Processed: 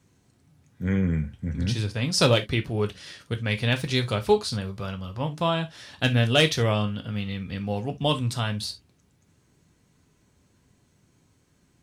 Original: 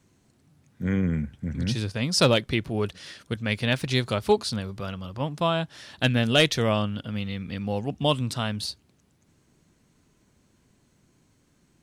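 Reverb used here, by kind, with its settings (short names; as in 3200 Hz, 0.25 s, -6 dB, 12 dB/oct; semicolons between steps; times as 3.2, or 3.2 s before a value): non-linear reverb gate 90 ms falling, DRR 5.5 dB; gain -1 dB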